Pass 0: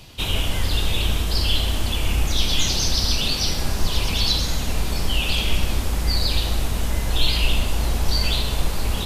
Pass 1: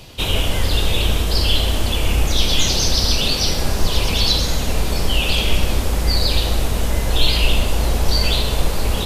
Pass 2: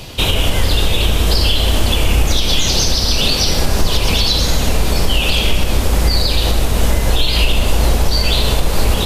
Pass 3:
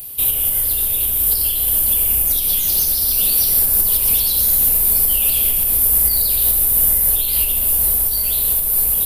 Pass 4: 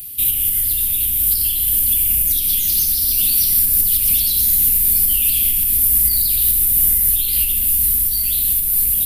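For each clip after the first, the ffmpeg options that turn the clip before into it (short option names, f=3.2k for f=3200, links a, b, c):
-af "equalizer=f=500:t=o:w=0.87:g=5,volume=3.5dB"
-af "alimiter=limit=-12dB:level=0:latency=1:release=238,volume=8.5dB"
-af "dynaudnorm=f=830:g=5:m=11.5dB,aexciter=amount=11.4:drive=7:freq=9.3k,aemphasis=mode=production:type=50kf,volume=-18dB"
-af "asuperstop=centerf=740:order=8:qfactor=0.53"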